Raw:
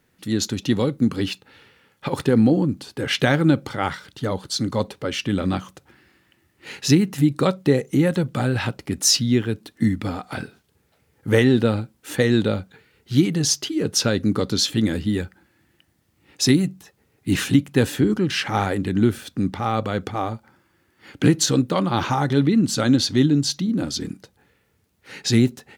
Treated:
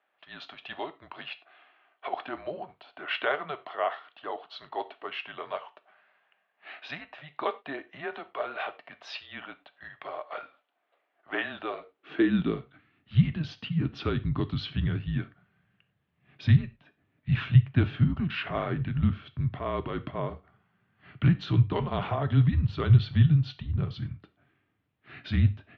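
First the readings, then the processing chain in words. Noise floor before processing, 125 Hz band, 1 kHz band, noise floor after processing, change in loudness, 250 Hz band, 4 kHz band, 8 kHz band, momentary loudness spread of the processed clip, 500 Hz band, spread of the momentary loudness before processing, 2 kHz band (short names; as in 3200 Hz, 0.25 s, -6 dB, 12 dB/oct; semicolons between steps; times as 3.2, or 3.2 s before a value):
-65 dBFS, -2.5 dB, -7.0 dB, -76 dBFS, -7.5 dB, -12.5 dB, -15.0 dB, under -40 dB, 19 LU, -12.0 dB, 11 LU, -7.5 dB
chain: non-linear reverb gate 0.13 s falling, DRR 11.5 dB; mistuned SSB -150 Hz 150–3500 Hz; high-pass sweep 660 Hz -> 110 Hz, 11.68–12.8; gain -8 dB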